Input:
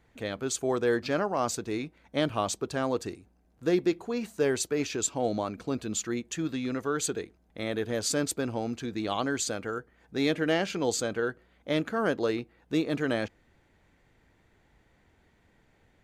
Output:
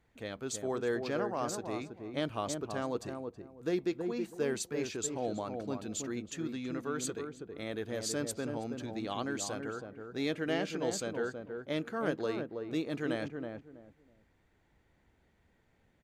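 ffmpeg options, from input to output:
-filter_complex "[0:a]asplit=2[s0][s1];[s1]adelay=324,lowpass=f=860:p=1,volume=0.631,asplit=2[s2][s3];[s3]adelay=324,lowpass=f=860:p=1,volume=0.25,asplit=2[s4][s5];[s5]adelay=324,lowpass=f=860:p=1,volume=0.25[s6];[s0][s2][s4][s6]amix=inputs=4:normalize=0,volume=0.447"

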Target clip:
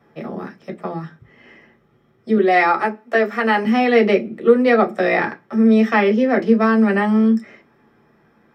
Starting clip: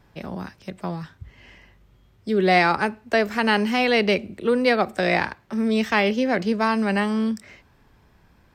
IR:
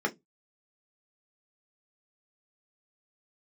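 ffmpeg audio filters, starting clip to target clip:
-filter_complex "[0:a]asettb=1/sr,asplit=3[s0][s1][s2];[s0]atrim=end=2.374[s3];[s1]atrim=start=2.37:end=3.65,asetpts=PTS-STARTPTS,afade=t=in:d=0.004:c=qsin,afade=t=out:st=1.276:d=0.004:c=qsin,highpass=f=470:p=1[s4];[s2]atrim=start=3.646[s5];[s3][s4]acrossfade=d=0.004:c1=hsin:c2=qsin[s6];[s6][s5]acrossfade=d=0.004:c1=qsin:c2=hsin[s7];[1:a]atrim=start_sample=2205[s8];[s7][s8]afir=irnorm=-1:irlink=0,volume=0.531"

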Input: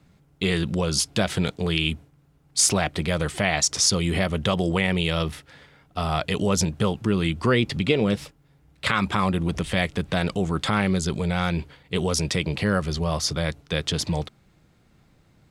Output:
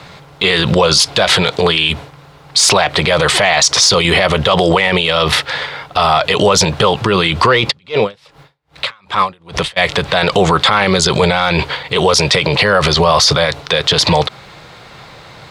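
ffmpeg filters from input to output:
-filter_complex "[0:a]asplit=2[s0][s1];[s1]highpass=f=720:p=1,volume=2.82,asoftclip=type=tanh:threshold=0.531[s2];[s0][s2]amix=inputs=2:normalize=0,lowpass=f=7200:p=1,volume=0.501,equalizer=f=125:t=o:w=1:g=7,equalizer=f=250:t=o:w=1:g=-4,equalizer=f=500:t=o:w=1:g=8,equalizer=f=1000:t=o:w=1:g=9,equalizer=f=2000:t=o:w=1:g=4,equalizer=f=4000:t=o:w=1:g=10,alimiter=level_in=7.5:limit=0.891:release=50:level=0:latency=1,asplit=3[s3][s4][s5];[s3]afade=t=out:st=7.7:d=0.02[s6];[s4]aeval=exprs='val(0)*pow(10,-38*(0.5-0.5*cos(2*PI*2.5*n/s))/20)':c=same,afade=t=in:st=7.7:d=0.02,afade=t=out:st=9.76:d=0.02[s7];[s5]afade=t=in:st=9.76:d=0.02[s8];[s6][s7][s8]amix=inputs=3:normalize=0,volume=0.891"

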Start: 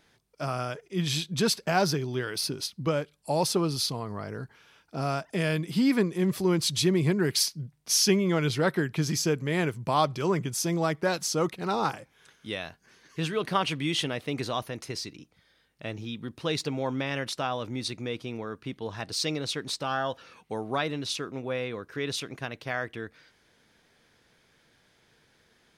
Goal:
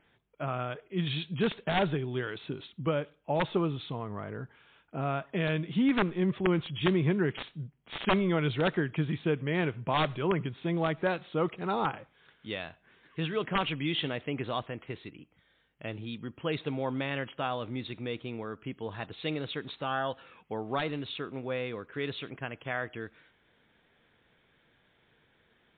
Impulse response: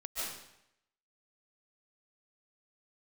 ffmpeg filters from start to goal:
-filter_complex "[0:a]aeval=exprs='(mod(5.62*val(0)+1,2)-1)/5.62':c=same,asplit=2[s0][s1];[1:a]atrim=start_sample=2205,asetrate=88200,aresample=44100[s2];[s1][s2]afir=irnorm=-1:irlink=0,volume=0.0794[s3];[s0][s3]amix=inputs=2:normalize=0,volume=0.794" -ar 8000 -c:a libmp3lame -b:a 32k

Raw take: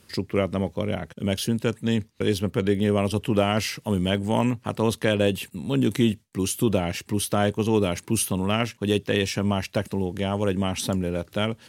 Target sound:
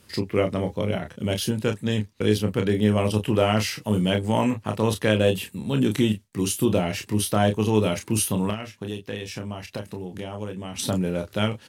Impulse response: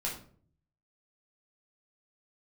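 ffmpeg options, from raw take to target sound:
-filter_complex "[0:a]asettb=1/sr,asplit=3[s0][s1][s2];[s0]atrim=end=8.504[s3];[s1]atrim=start=8.5:end=10.79,asetpts=PTS-STARTPTS,afade=t=in:d=0.004:c=qsin,afade=t=out:st=2.286:d=0.004:c=qsin,acompressor=threshold=0.0316:ratio=6[s4];[s2]atrim=start=10.786[s5];[s3][s4]acrossfade=d=0.004:c1=hsin:c2=qsin[s6];[s6][s5]acrossfade=d=0.004:c1=qsin:c2=hsin,aecho=1:1:28|38:0.447|0.237"

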